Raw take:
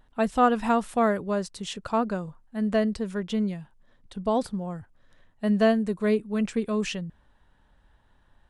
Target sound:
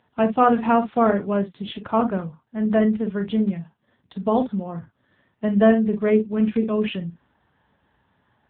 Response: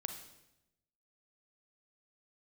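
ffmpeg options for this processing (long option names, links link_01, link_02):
-filter_complex "[1:a]atrim=start_sample=2205,atrim=end_sample=3528,asetrate=52920,aresample=44100[link_01];[0:a][link_01]afir=irnorm=-1:irlink=0,volume=8dB" -ar 8000 -c:a libopencore_amrnb -b:a 6700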